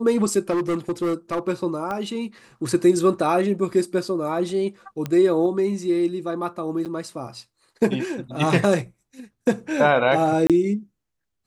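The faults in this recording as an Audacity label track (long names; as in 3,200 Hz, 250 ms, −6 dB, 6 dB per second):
0.500000	1.400000	clipping −19.5 dBFS
1.910000	1.910000	click −17 dBFS
5.060000	5.060000	click −14 dBFS
6.850000	6.860000	drop-out 7.6 ms
10.470000	10.500000	drop-out 27 ms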